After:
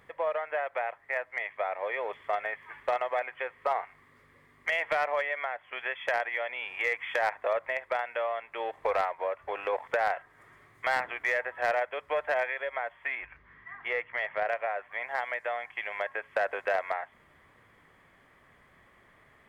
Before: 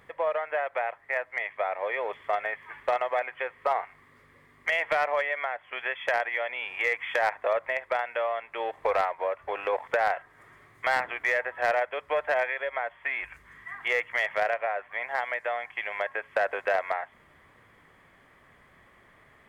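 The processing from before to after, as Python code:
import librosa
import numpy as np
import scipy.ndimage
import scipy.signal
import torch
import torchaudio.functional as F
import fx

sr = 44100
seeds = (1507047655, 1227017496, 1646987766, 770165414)

y = fx.air_absorb(x, sr, metres=280.0, at=(13.15, 14.49))
y = y * 10.0 ** (-2.5 / 20.0)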